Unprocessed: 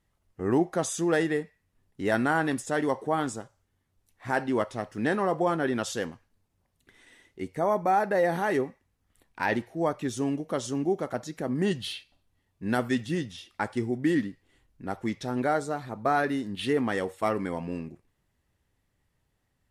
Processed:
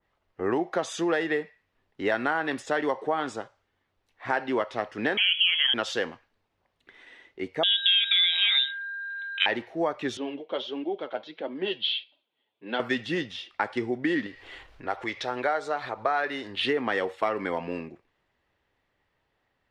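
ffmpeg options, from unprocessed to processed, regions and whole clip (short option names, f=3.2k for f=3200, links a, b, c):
-filter_complex "[0:a]asettb=1/sr,asplit=3[a][b][c];[a]atrim=end=5.174[d];[b]atrim=start=5.17:end=5.74,asetpts=PTS-STARTPTS,afade=t=in:d=0.004:c=qsin,afade=t=out:st=0.566:d=0.004:c=qsin,bandreject=f=107.7:t=h:w=4,bandreject=f=215.4:t=h:w=4,bandreject=f=323.1:t=h:w=4,bandreject=f=430.8:t=h:w=4,bandreject=f=538.5:t=h:w=4,bandreject=f=646.2:t=h:w=4,bandreject=f=753.9:t=h:w=4,bandreject=f=861.6:t=h:w=4,bandreject=f=969.3:t=h:w=4,bandreject=f=1.077k:t=h:w=4,bandreject=f=1.1847k:t=h:w=4,bandreject=f=1.2924k:t=h:w=4,bandreject=f=1.4001k:t=h:w=4,bandreject=f=1.5078k:t=h:w=4,bandreject=f=1.6155k:t=h:w=4,bandreject=f=1.7232k:t=h:w=4,bandreject=f=1.8309k:t=h:w=4,lowpass=f=3k:t=q:w=0.5098,lowpass=f=3k:t=q:w=0.6013,lowpass=f=3k:t=q:w=0.9,lowpass=f=3k:t=q:w=2.563,afreqshift=-3500[e];[c]atrim=start=5.736[f];[d][e]acrossfade=d=0.004:c1=hsin:c2=qsin[g];[g][f]acrossfade=d=0.004:c1=qsin:c2=hsin,asettb=1/sr,asplit=3[h][i][j];[h]atrim=end=7.634[k];[i]atrim=start=7.63:end=9.46,asetpts=PTS-STARTPTS,afade=t=in:d=0.004:c=qsin,afade=t=out:st=1.826:d=0.004:c=qsin,acrusher=bits=8:mode=log:mix=0:aa=0.000001,aeval=exprs='val(0)+0.01*sin(2*PI*2400*n/s)':c=same,lowpass=f=3.4k:t=q:w=0.5098,lowpass=f=3.4k:t=q:w=0.6013,lowpass=f=3.4k:t=q:w=0.9,lowpass=f=3.4k:t=q:w=2.563,afreqshift=-4000[l];[j]atrim=start=9.456[m];[k][l]acrossfade=d=0.004:c1=hsin:c2=qsin[n];[n][m]acrossfade=d=0.004:c1=qsin:c2=hsin,asettb=1/sr,asplit=3[o][p][q];[o]atrim=end=10.174[r];[p]atrim=start=10.17:end=12.8,asetpts=PTS-STARTPTS,afade=t=in:d=0.004:c=qsin,afade=t=out:st=2.626:d=0.004:c=qsin,flanger=delay=3.1:depth=6.3:regen=36:speed=1.5:shape=sinusoidal,highpass=290,equalizer=f=730:t=q:w=4:g=-4,equalizer=f=1.2k:t=q:w=4:g=-7,equalizer=f=1.8k:t=q:w=4:g=-8,equalizer=f=3.3k:t=q:w=4:g=9,lowpass=f=4k:w=0.5412,lowpass=f=4k:w=1.3066[s];[q]atrim=start=12.796[t];[r][s]acrossfade=d=0.004:c1=hsin:c2=qsin[u];[u][t]acrossfade=d=0.004:c1=qsin:c2=hsin,asettb=1/sr,asplit=3[v][w][x];[v]atrim=end=14.264[y];[w]atrim=start=14.26:end=16.65,asetpts=PTS-STARTPTS,afade=t=in:d=0.004:c=qsin,afade=t=out:st=2.386:d=0.004:c=qsin,equalizer=f=200:w=1:g=-11.5,acompressor=mode=upward:threshold=-32dB:ratio=2.5:attack=3.2:release=140:knee=2.83:detection=peak[z];[x]atrim=start=16.646[aa];[y][z]acrossfade=d=0.004:c1=hsin:c2=qsin[ab];[ab][aa]acrossfade=d=0.004:c1=qsin:c2=hsin,acrossover=split=340 4300:gain=0.224 1 0.0631[ac][ad][ae];[ac][ad][ae]amix=inputs=3:normalize=0,acompressor=threshold=-29dB:ratio=6,adynamicequalizer=threshold=0.00562:dfrequency=1900:dqfactor=0.7:tfrequency=1900:tqfactor=0.7:attack=5:release=100:ratio=0.375:range=2:mode=boostabove:tftype=highshelf,volume=6.5dB"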